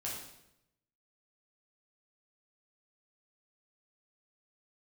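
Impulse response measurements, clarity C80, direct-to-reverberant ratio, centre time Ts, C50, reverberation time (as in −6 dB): 5.0 dB, −5.5 dB, 52 ms, 2.0 dB, 0.80 s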